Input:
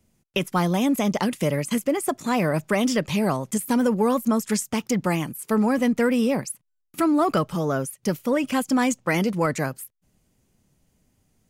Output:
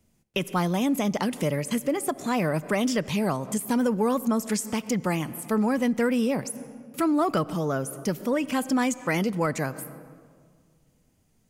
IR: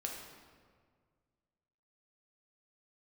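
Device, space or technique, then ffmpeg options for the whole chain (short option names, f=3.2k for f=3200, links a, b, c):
ducked reverb: -filter_complex "[0:a]asplit=3[a][b][c];[1:a]atrim=start_sample=2205[d];[b][d]afir=irnorm=-1:irlink=0[e];[c]apad=whole_len=507063[f];[e][f]sidechaincompress=threshold=-33dB:ratio=8:attack=8.5:release=110,volume=-6.5dB[g];[a][g]amix=inputs=2:normalize=0,volume=-3.5dB"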